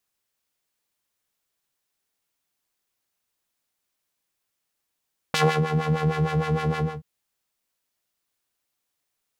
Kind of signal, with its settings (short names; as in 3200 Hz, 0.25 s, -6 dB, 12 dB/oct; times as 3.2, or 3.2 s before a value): synth patch with filter wobble D#3, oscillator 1 square, interval -12 st, oscillator 2 level -6 dB, noise -17.5 dB, filter bandpass, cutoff 310 Hz, Q 0.9, filter envelope 2.5 oct, attack 1.1 ms, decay 0.28 s, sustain -10 dB, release 0.23 s, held 1.45 s, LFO 6.5 Hz, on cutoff 1.5 oct